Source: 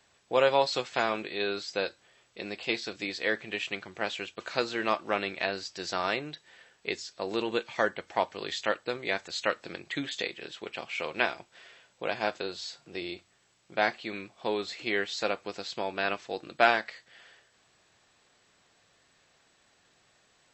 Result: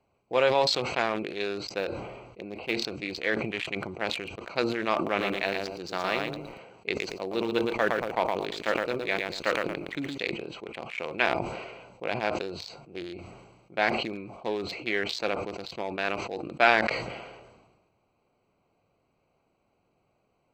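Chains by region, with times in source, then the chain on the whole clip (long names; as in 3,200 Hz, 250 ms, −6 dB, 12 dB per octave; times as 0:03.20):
0:01.78–0:02.75: one scale factor per block 5 bits + high-shelf EQ 4,400 Hz −9.5 dB
0:04.95–0:10.18: high-pass filter 82 Hz + feedback echo at a low word length 115 ms, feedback 35%, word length 8 bits, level −3.5 dB
whole clip: adaptive Wiener filter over 25 samples; parametric band 2,300 Hz +5 dB 0.34 octaves; level that may fall only so fast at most 43 dB per second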